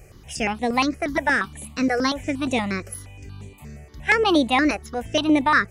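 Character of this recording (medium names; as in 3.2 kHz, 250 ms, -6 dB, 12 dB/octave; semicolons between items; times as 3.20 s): notches that jump at a steady rate 8.5 Hz 990–5100 Hz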